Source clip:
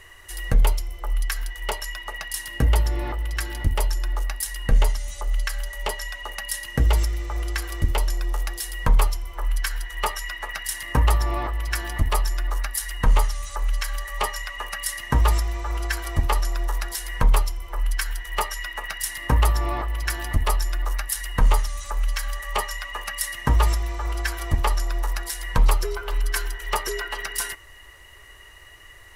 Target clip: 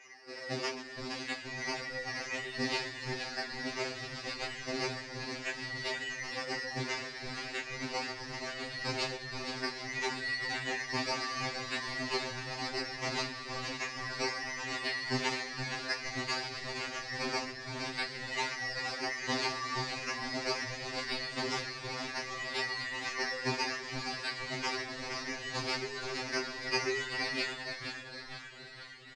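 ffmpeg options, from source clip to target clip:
ffmpeg -i in.wav -filter_complex "[0:a]equalizer=frequency=2400:width_type=o:width=0.36:gain=7,acrusher=samples=10:mix=1:aa=0.000001:lfo=1:lforange=6:lforate=0.65,flanger=delay=19.5:depth=7.3:speed=1.5,acrusher=bits=3:mode=log:mix=0:aa=0.000001,highpass=300,equalizer=frequency=320:width_type=q:width=4:gain=10,equalizer=frequency=550:width_type=q:width=4:gain=-5,equalizer=frequency=1000:width_type=q:width=4:gain=-8,equalizer=frequency=1400:width_type=q:width=4:gain=-9,equalizer=frequency=3300:width_type=q:width=4:gain=-9,equalizer=frequency=4800:width_type=q:width=4:gain=8,lowpass=frequency=5800:width=0.5412,lowpass=frequency=5800:width=1.3066,asplit=8[link_01][link_02][link_03][link_04][link_05][link_06][link_07][link_08];[link_02]adelay=469,afreqshift=-120,volume=-6.5dB[link_09];[link_03]adelay=938,afreqshift=-240,volume=-11.7dB[link_10];[link_04]adelay=1407,afreqshift=-360,volume=-16.9dB[link_11];[link_05]adelay=1876,afreqshift=-480,volume=-22.1dB[link_12];[link_06]adelay=2345,afreqshift=-600,volume=-27.3dB[link_13];[link_07]adelay=2814,afreqshift=-720,volume=-32.5dB[link_14];[link_08]adelay=3283,afreqshift=-840,volume=-37.7dB[link_15];[link_01][link_09][link_10][link_11][link_12][link_13][link_14][link_15]amix=inputs=8:normalize=0,afftfilt=real='re*2.45*eq(mod(b,6),0)':imag='im*2.45*eq(mod(b,6),0)':win_size=2048:overlap=0.75" out.wav

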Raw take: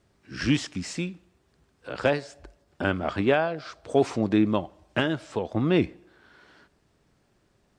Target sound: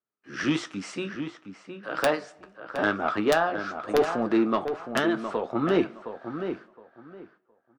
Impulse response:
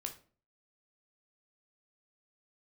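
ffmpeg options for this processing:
-filter_complex "[0:a]highpass=210,aemphasis=mode=reproduction:type=50kf,agate=range=-29dB:threshold=-60dB:ratio=16:detection=peak,equalizer=frequency=1200:width_type=o:width=0.48:gain=10.5,aeval=exprs='(mod(2.66*val(0)+1,2)-1)/2.66':channel_layout=same,asetrate=46722,aresample=44100,atempo=0.943874,asoftclip=type=tanh:threshold=-14dB,flanger=delay=7.9:depth=6.5:regen=-56:speed=0.99:shape=triangular,asplit=2[link_01][link_02];[link_02]adelay=715,lowpass=frequency=2200:poles=1,volume=-8dB,asplit=2[link_03][link_04];[link_04]adelay=715,lowpass=frequency=2200:poles=1,volume=0.21,asplit=2[link_05][link_06];[link_06]adelay=715,lowpass=frequency=2200:poles=1,volume=0.21[link_07];[link_01][link_03][link_05][link_07]amix=inputs=4:normalize=0,volume=5dB"

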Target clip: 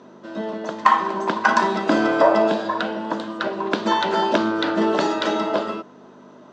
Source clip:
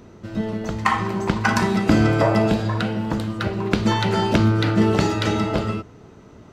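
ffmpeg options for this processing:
ffmpeg -i in.wav -af "aeval=exprs='val(0)+0.0224*(sin(2*PI*50*n/s)+sin(2*PI*2*50*n/s)/2+sin(2*PI*3*50*n/s)/3+sin(2*PI*4*50*n/s)/4+sin(2*PI*5*50*n/s)/5)':channel_layout=same,highpass=frequency=230:width=0.5412,highpass=frequency=230:width=1.3066,equalizer=frequency=340:width_type=q:width=4:gain=3,equalizer=frequency=610:width_type=q:width=4:gain=9,equalizer=frequency=1000:width_type=q:width=4:gain=10,equalizer=frequency=1600:width_type=q:width=4:gain=6,equalizer=frequency=2200:width_type=q:width=4:gain=-4,equalizer=frequency=3500:width_type=q:width=4:gain=5,lowpass=frequency=7100:width=0.5412,lowpass=frequency=7100:width=1.3066,volume=-2.5dB" out.wav

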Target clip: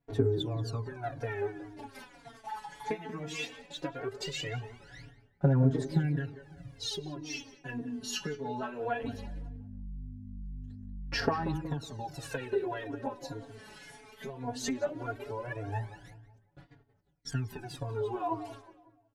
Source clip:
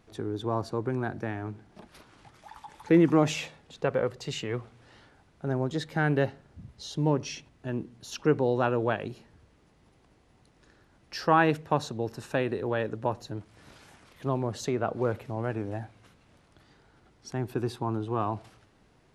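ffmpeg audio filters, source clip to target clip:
ffmpeg -i in.wav -filter_complex "[0:a]bandreject=frequency=1200:width=6.7,agate=range=-31dB:threshold=-56dB:ratio=16:detection=peak,equalizer=frequency=1800:width=1.5:gain=2,aecho=1:1:7.1:0.93,bandreject=frequency=311.1:width_type=h:width=4,bandreject=frequency=622.2:width_type=h:width=4,bandreject=frequency=933.3:width_type=h:width=4,bandreject=frequency=1244.4:width_type=h:width=4,bandreject=frequency=1555.5:width_type=h:width=4,bandreject=frequency=1866.6:width_type=h:width=4,bandreject=frequency=2177.7:width_type=h:width=4,bandreject=frequency=2488.8:width_type=h:width=4,bandreject=frequency=2799.9:width_type=h:width=4,bandreject=frequency=3111:width_type=h:width=4,bandreject=frequency=3422.1:width_type=h:width=4,bandreject=frequency=3733.2:width_type=h:width=4,bandreject=frequency=4044.3:width_type=h:width=4,bandreject=frequency=4355.4:width_type=h:width=4,bandreject=frequency=4666.5:width_type=h:width=4,bandreject=frequency=4977.6:width_type=h:width=4,bandreject=frequency=5288.7:width_type=h:width=4,bandreject=frequency=5599.8:width_type=h:width=4,bandreject=frequency=5910.9:width_type=h:width=4,bandreject=frequency=6222:width_type=h:width=4,bandreject=frequency=6533.1:width_type=h:width=4,bandreject=frequency=6844.2:width_type=h:width=4,bandreject=frequency=7155.3:width_type=h:width=4,bandreject=frequency=7466.4:width_type=h:width=4,bandreject=frequency=7777.5:width_type=h:width=4,bandreject=frequency=8088.6:width_type=h:width=4,bandreject=frequency=8399.7:width_type=h:width=4,bandreject=frequency=8710.8:width_type=h:width=4,bandreject=frequency=9021.9:width_type=h:width=4,bandreject=frequency=9333:width_type=h:width=4,bandreject=frequency=9644.1:width_type=h:width=4,bandreject=frequency=9955.2:width_type=h:width=4,bandreject=frequency=10266.3:width_type=h:width=4,acompressor=threshold=-31dB:ratio=16,aphaser=in_gain=1:out_gain=1:delay=4.7:decay=0.79:speed=0.18:type=sinusoidal,asettb=1/sr,asplit=3[link_01][link_02][link_03];[link_01]atrim=end=9.034[link_04];[link_02]atrim=start=9.03:end=11.57,asetpts=PTS-STARTPTS,afade=type=in:duration=0.004:curve=qsin,afade=type=out:start_time=2.536:duration=0.004:curve=qsin,aeval=exprs='val(0)+0.0141*(sin(2*PI*50*n/s)+sin(2*PI*2*50*n/s)/2+sin(2*PI*3*50*n/s)/3+sin(2*PI*4*50*n/s)/4+sin(2*PI*5*50*n/s)/5)':channel_layout=same[link_05];[link_03]atrim=start=11.566[link_06];[link_04][link_05]acrossfade=duration=0.004:curve1=hsin:curve2=qsin[link_07];[link_07][link_06]acrossfade=duration=0.004:curve1=qsin:curve2=hsin,asplit=2[link_08][link_09];[link_09]adelay=184,lowpass=frequency=1500:poles=1,volume=-11dB,asplit=2[link_10][link_11];[link_11]adelay=184,lowpass=frequency=1500:poles=1,volume=0.41,asplit=2[link_12][link_13];[link_13]adelay=184,lowpass=frequency=1500:poles=1,volume=0.41,asplit=2[link_14][link_15];[link_15]adelay=184,lowpass=frequency=1500:poles=1,volume=0.41[link_16];[link_08][link_10][link_12][link_14][link_16]amix=inputs=5:normalize=0,asplit=2[link_17][link_18];[link_18]adelay=3.7,afreqshift=-1.8[link_19];[link_17][link_19]amix=inputs=2:normalize=1" out.wav

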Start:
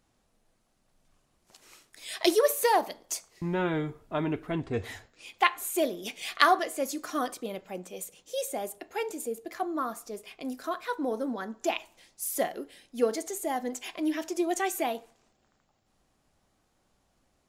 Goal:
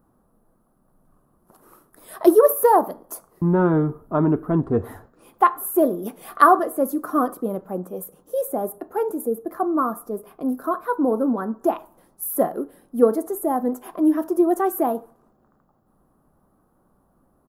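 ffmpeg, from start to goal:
ffmpeg -i in.wav -af "firequalizer=gain_entry='entry(110,0);entry(160,6);entry(720,0);entry(1200,4);entry(2200,-22);entry(7100,-21);entry(11000,1)':delay=0.05:min_phase=1,volume=7dB" out.wav

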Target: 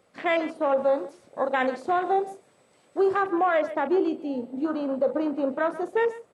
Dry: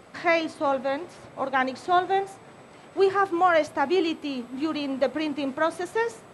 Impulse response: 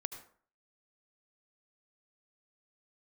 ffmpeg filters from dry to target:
-filter_complex "[0:a]highpass=40,equalizer=frequency=520:width=3.1:gain=6.5,asplit=2[link_01][link_02];[link_02]adelay=39,volume=-12.5dB[link_03];[link_01][link_03]amix=inputs=2:normalize=0,afwtdn=0.0251,aecho=1:1:133:0.119,alimiter=limit=-15dB:level=0:latency=1:release=51,asetnsamples=nb_out_samples=441:pad=0,asendcmd='0.78 highshelf g 12;3.23 highshelf g 2.5',highshelf=frequency=3400:gain=7"

